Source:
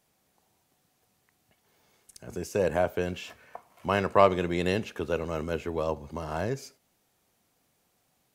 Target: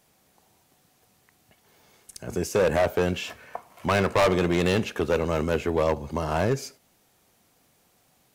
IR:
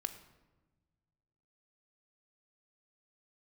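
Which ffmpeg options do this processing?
-af "volume=24dB,asoftclip=hard,volume=-24dB,volume=7.5dB"

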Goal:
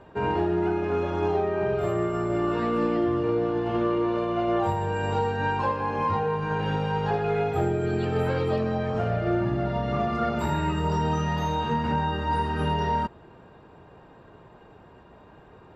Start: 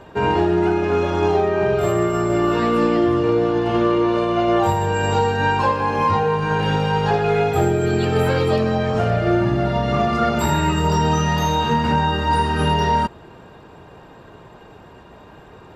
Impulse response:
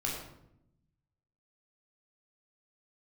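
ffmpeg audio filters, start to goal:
-af "highshelf=f=4.2k:g=-11.5,volume=-7dB"

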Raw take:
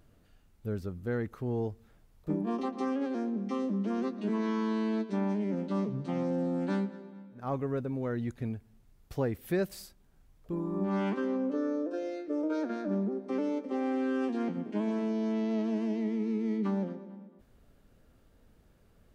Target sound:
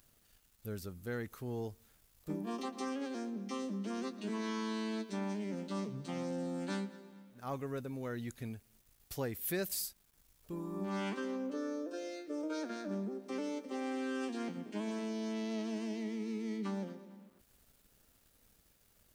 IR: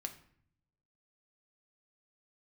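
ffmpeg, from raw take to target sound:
-af "crystalizer=i=6.5:c=0,aeval=exprs='val(0)*gte(abs(val(0)),0.00133)':c=same,volume=-8dB"

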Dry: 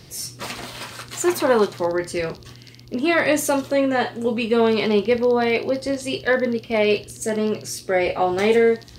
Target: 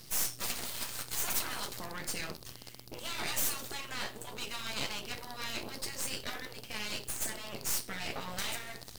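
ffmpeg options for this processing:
-af "aemphasis=mode=production:type=75fm,afftfilt=real='re*lt(hypot(re,im),0.251)':imag='im*lt(hypot(re,im),0.251)':win_size=1024:overlap=0.75,aeval=exprs='max(val(0),0)':c=same,volume=-6dB"

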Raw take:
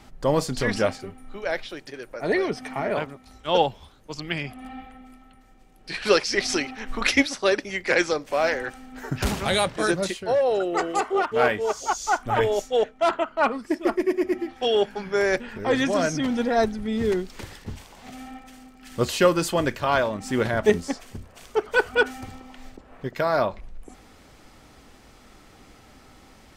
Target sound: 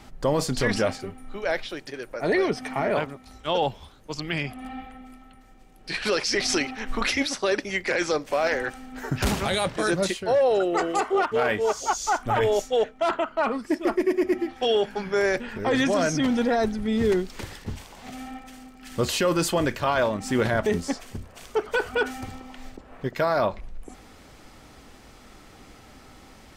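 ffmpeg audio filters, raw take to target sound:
-af "alimiter=limit=-16dB:level=0:latency=1:release=11,volume=2dB"

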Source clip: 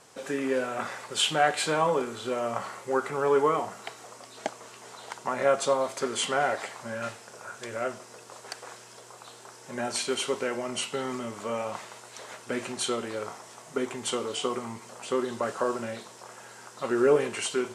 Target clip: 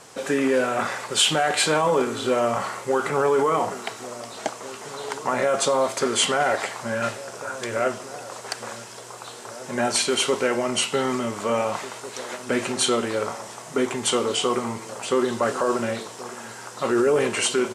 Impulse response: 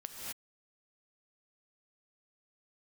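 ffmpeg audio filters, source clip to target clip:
-filter_complex "[0:a]acrossover=split=4600[a][b];[a]alimiter=limit=-21.5dB:level=0:latency=1:release=11[c];[c][b]amix=inputs=2:normalize=0,asplit=2[d][e];[e]adelay=1749,volume=-15dB,highshelf=f=4k:g=-39.4[f];[d][f]amix=inputs=2:normalize=0,volume=8.5dB"

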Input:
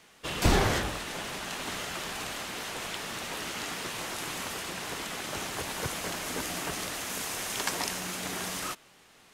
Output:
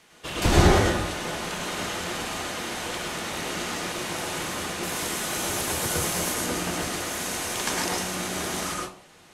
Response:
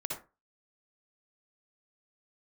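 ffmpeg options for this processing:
-filter_complex "[0:a]asettb=1/sr,asplit=3[a][b][c];[a]atrim=end=4.834[d];[b]atrim=start=4.83:end=6.34,asetpts=PTS-STARTPTS,afade=t=in:d=0.004:c=qsin,afade=t=out:st=1.506:d=0.004:c=qsin,highshelf=f=7.4k:g=11.5[e];[c]atrim=start=6.336[f];[d][e]acrossfade=d=0.004:c1=hsin:c2=qsin[g];[g][f]acrossfade=d=0.004:c1=qsin:c2=hsin[h];[1:a]atrim=start_sample=2205,asetrate=25137,aresample=44100[i];[h][i]afir=irnorm=-1:irlink=0"

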